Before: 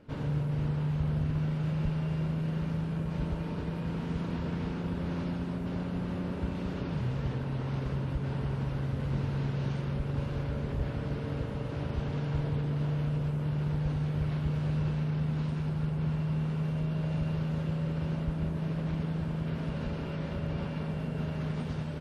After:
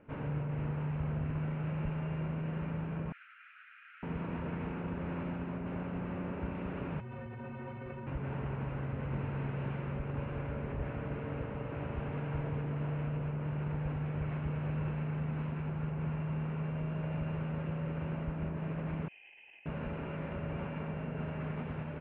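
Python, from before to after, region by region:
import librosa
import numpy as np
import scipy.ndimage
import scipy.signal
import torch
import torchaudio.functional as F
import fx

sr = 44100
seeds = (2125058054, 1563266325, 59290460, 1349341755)

y = fx.chain(x, sr, fx.steep_highpass(hz=1300.0, slope=96),
    fx.air_absorb(metres=210.0), at=(3.12, 4.03))
y = fx.chain(y, sr, fx.stiff_resonator(f0_hz=110.0, decay_s=0.3, stiffness=0.03),
    fx.env_flatten(amount_pct=100), at=(7.0, 8.07))
y = fx.chain(y, sr, fx.vowel_filter(vowel='a'),
    fx.over_compress(threshold_db=-55.0, ratio=-0.5),
    fx.freq_invert(carrier_hz=3200), at=(19.08, 19.66))
y = scipy.signal.sosfilt(scipy.signal.cheby1(4, 1.0, 2600.0, 'lowpass', fs=sr, output='sos'), y)
y = fx.low_shelf(y, sr, hz=290.0, db=-5.5)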